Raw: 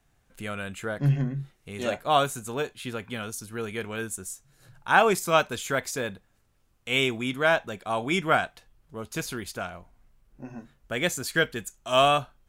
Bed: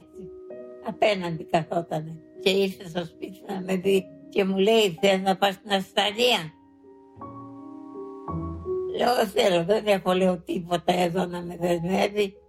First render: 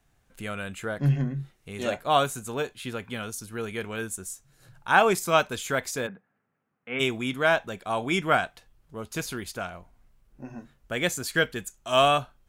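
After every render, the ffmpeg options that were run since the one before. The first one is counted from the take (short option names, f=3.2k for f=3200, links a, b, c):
-filter_complex "[0:a]asplit=3[a][b][c];[a]afade=t=out:st=6.06:d=0.02[d];[b]highpass=f=160:w=0.5412,highpass=f=160:w=1.3066,equalizer=f=330:t=q:w=4:g=-7,equalizer=f=580:t=q:w=4:g=-5,equalizer=f=1k:t=q:w=4:g=-4,lowpass=f=2k:w=0.5412,lowpass=f=2k:w=1.3066,afade=t=in:st=6.06:d=0.02,afade=t=out:st=6.99:d=0.02[e];[c]afade=t=in:st=6.99:d=0.02[f];[d][e][f]amix=inputs=3:normalize=0"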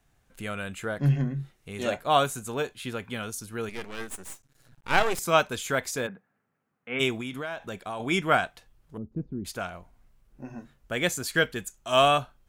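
-filter_complex "[0:a]asettb=1/sr,asplit=3[a][b][c];[a]atrim=end=3.694[d];[b]atrim=start=3.69:end=5.19,asetpts=PTS-STARTPTS,afade=t=in:d=0.004:c=qsin,afade=t=out:st=1.496:d=0.004:c=qsin,aeval=exprs='max(val(0),0)':c=same[e];[c]atrim=start=5.186[f];[d][e]acrossfade=d=0.004:c1=hsin:c2=qsin[g];[g][f]acrossfade=d=0.004:c1=qsin:c2=hsin,asettb=1/sr,asplit=3[h][i][j];[h]atrim=end=7.204[k];[i]atrim=start=7.2:end=8,asetpts=PTS-STARTPTS,afade=t=in:d=0.004:c=qsin,afade=t=out:st=0.796:d=0.004:c=qsin,acompressor=threshold=-30dB:ratio=8:attack=3.2:release=140:knee=1:detection=peak[l];[j]atrim=start=7.996[m];[k][l]acrossfade=d=0.004:c1=hsin:c2=qsin[n];[n][m]acrossfade=d=0.004:c1=qsin:c2=hsin,asettb=1/sr,asplit=3[o][p][q];[o]atrim=end=8.974[r];[p]atrim=start=8.97:end=9.45,asetpts=PTS-STARTPTS,afade=t=in:d=0.004:c=qsin,afade=t=out:st=0.476:d=0.004:c=qsin,lowpass=f=250:t=q:w=1.6[s];[q]atrim=start=9.446[t];[r][s]acrossfade=d=0.004:c1=hsin:c2=qsin[u];[u][t]acrossfade=d=0.004:c1=qsin:c2=hsin"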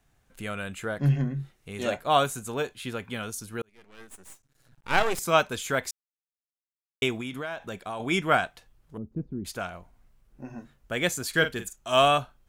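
-filter_complex "[0:a]asettb=1/sr,asplit=3[a][b][c];[a]atrim=end=11.294[d];[b]atrim=start=11.29:end=11.76,asetpts=PTS-STARTPTS,afade=t=in:d=0.004:c=qsin,afade=t=out:st=0.466:d=0.004:c=qsin,asplit=2[e][f];[f]adelay=44,volume=-9dB[g];[e][g]amix=inputs=2:normalize=0,atrim=end_sample=20727[h];[c]atrim=start=11.756[i];[d][h]acrossfade=d=0.004:c1=hsin:c2=qsin[j];[j][i]acrossfade=d=0.004:c1=qsin:c2=hsin,asplit=4[k][l][m][n];[k]atrim=end=3.62,asetpts=PTS-STARTPTS,afade=t=out:st=3.616:d=0.004:c=hsin[o];[l]atrim=start=3.62:end=5.91,asetpts=PTS-STARTPTS,afade=t=in:d=1.47,afade=t=out:st=2.286:d=0.004:c=hsin[p];[m]atrim=start=5.91:end=7.02,asetpts=PTS-STARTPTS,volume=0[q];[n]atrim=start=7.02,asetpts=PTS-STARTPTS,afade=t=in:d=0.004:c=hsin[r];[o][p][q][r]concat=n=4:v=0:a=1"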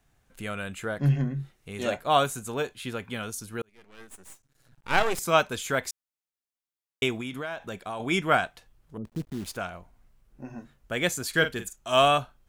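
-filter_complex "[0:a]asettb=1/sr,asplit=3[a][b][c];[a]atrim=end=9.054[d];[b]atrim=start=9.05:end=9.57,asetpts=PTS-STARTPTS,afade=t=in:d=0.004:c=qsin,afade=t=out:st=0.516:d=0.004:c=qsin,acrusher=bits=8:dc=4:mix=0:aa=0.000001[e];[c]atrim=start=9.566[f];[d][e]acrossfade=d=0.004:c1=hsin:c2=qsin[g];[g][f]acrossfade=d=0.004:c1=qsin:c2=hsin"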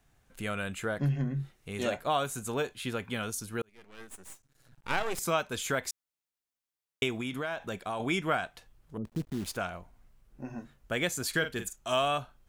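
-af "acompressor=threshold=-27dB:ratio=3"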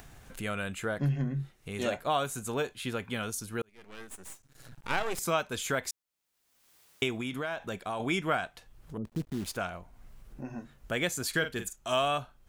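-af "acompressor=mode=upward:threshold=-38dB:ratio=2.5"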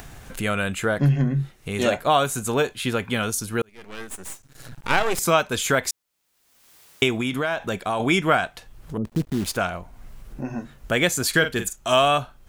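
-af "volume=10dB"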